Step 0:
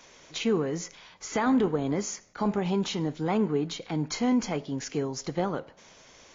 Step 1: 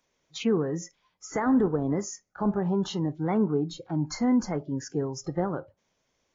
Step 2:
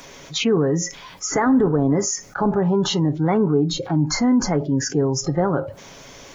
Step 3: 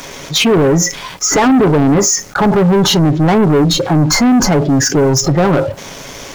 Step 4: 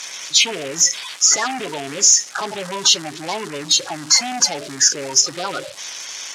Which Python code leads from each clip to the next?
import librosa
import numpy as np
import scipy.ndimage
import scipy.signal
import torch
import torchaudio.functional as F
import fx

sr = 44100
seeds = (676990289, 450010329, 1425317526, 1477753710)

y1 = fx.noise_reduce_blind(x, sr, reduce_db=20)
y1 = fx.low_shelf(y1, sr, hz=450.0, db=5.5)
y1 = y1 * librosa.db_to_amplitude(-2.5)
y2 = y1 + 0.3 * np.pad(y1, (int(7.2 * sr / 1000.0), 0))[:len(y1)]
y2 = fx.env_flatten(y2, sr, amount_pct=50)
y2 = y2 * librosa.db_to_amplitude(3.5)
y3 = fx.leveller(y2, sr, passes=3)
y3 = y3 * librosa.db_to_amplitude(2.5)
y4 = fx.spec_quant(y3, sr, step_db=30)
y4 = fx.dmg_crackle(y4, sr, seeds[0], per_s=520.0, level_db=-23.0)
y4 = fx.weighting(y4, sr, curve='ITU-R 468')
y4 = y4 * librosa.db_to_amplitude(-9.5)